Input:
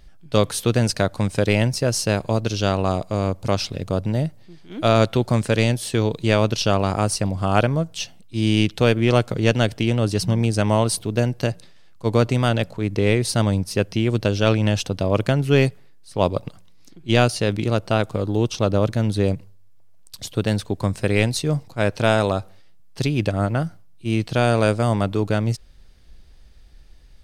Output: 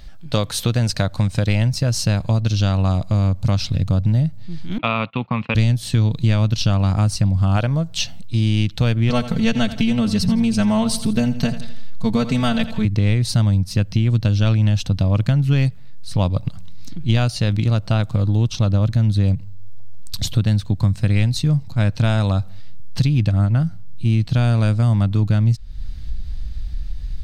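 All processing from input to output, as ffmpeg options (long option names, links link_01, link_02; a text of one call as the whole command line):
ffmpeg -i in.wav -filter_complex "[0:a]asettb=1/sr,asplit=3[link_01][link_02][link_03];[link_01]atrim=end=4.784[link_04];[link_02]atrim=start=4.78:end=5.55,asetpts=PTS-STARTPTS,afade=type=in:duration=0.004:curve=qsin,afade=type=out:start_time=0.766:duration=0.004:curve=qsin,agate=range=-21dB:threshold=-30dB:ratio=16:release=100:detection=peak,highpass=340,equalizer=frequency=340:width_type=q:width=4:gain=-9,equalizer=frequency=620:width_type=q:width=4:gain=-9,equalizer=frequency=1100:width_type=q:width=4:gain=6,equalizer=frequency=1600:width_type=q:width=4:gain=-9,equalizer=frequency=2600:width_type=q:width=4:gain=10,lowpass=frequency=2800:width=0.5412,lowpass=frequency=2800:width=1.3066[link_05];[link_03]atrim=start=5.546[link_06];[link_04][link_05]acrossfade=duration=0.004:curve1=hsin:curve2=qsin[link_07];[link_07][link_06]acrossfade=duration=0.004:curve1=qsin:curve2=hsin,asettb=1/sr,asplit=3[link_08][link_09][link_10];[link_08]atrim=end=9.094[link_11];[link_09]atrim=start=9.09:end=12.85,asetpts=PTS-STARTPTS,afade=type=in:duration=0.004:curve=qsin,afade=type=out:start_time=3.756:duration=0.004:curve=qsin,aecho=1:1:4.5:0.96,atrim=end_sample=165816,aecho=1:1:83|166|249|332:0.178|0.0711|0.0285|0.0114,atrim=end_sample=165816[link_12];[link_10]atrim=start=12.846[link_13];[link_11][link_12]acrossfade=duration=0.004:curve1=hsin:curve2=qsin[link_14];[link_14][link_13]acrossfade=duration=0.004:curve1=qsin:curve2=hsin,asubboost=boost=5.5:cutoff=190,acompressor=threshold=-27dB:ratio=3,equalizer=frequency=400:width_type=o:width=0.33:gain=-8,equalizer=frequency=4000:width_type=o:width=0.33:gain=5,equalizer=frequency=10000:width_type=o:width=0.33:gain=-6,volume=8.5dB" out.wav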